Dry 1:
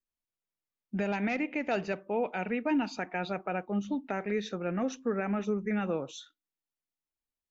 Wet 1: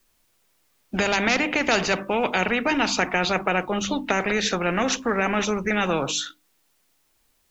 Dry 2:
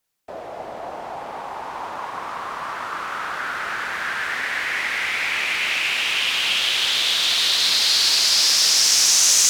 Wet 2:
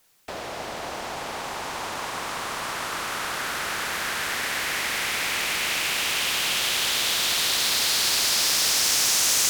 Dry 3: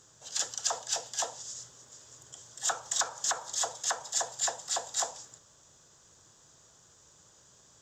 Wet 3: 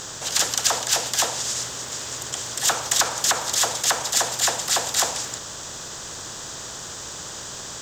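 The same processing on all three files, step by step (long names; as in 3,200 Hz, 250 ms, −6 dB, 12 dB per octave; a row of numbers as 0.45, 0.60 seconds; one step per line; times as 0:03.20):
mains-hum notches 50/100/150/200/250/300 Hz
every bin compressed towards the loudest bin 2 to 1
loudness normalisation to −23 LKFS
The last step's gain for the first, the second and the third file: +12.0, −5.0, +10.5 decibels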